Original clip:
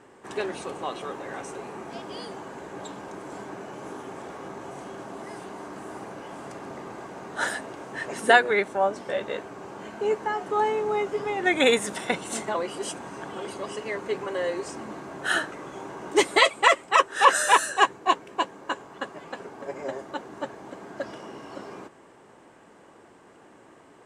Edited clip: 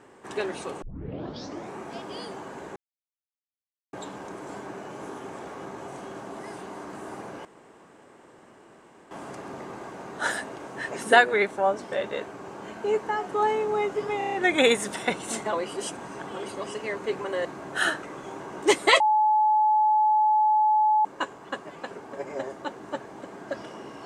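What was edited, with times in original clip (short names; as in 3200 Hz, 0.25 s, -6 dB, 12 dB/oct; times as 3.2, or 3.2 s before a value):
0.82 tape start 0.94 s
2.76 insert silence 1.17 s
6.28 insert room tone 1.66 s
11.35 stutter 0.03 s, 6 plays
14.47–14.94 cut
16.49–18.54 bleep 857 Hz -17.5 dBFS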